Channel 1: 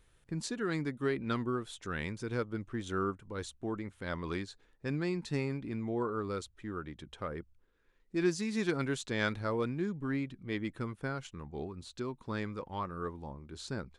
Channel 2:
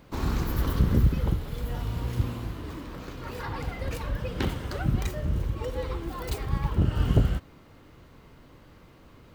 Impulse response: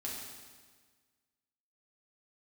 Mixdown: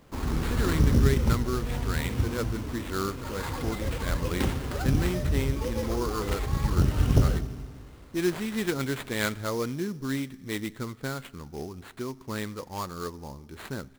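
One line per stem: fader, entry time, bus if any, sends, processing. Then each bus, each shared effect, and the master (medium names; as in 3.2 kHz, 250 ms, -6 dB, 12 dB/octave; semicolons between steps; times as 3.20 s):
-0.5 dB, 0.00 s, send -17.5 dB, peaking EQ 2 kHz +4 dB 0.33 oct
-5.0 dB, 0.00 s, send -5.5 dB, none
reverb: on, RT60 1.5 s, pre-delay 4 ms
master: sample-rate reducer 5.7 kHz, jitter 20%; level rider gain up to 3 dB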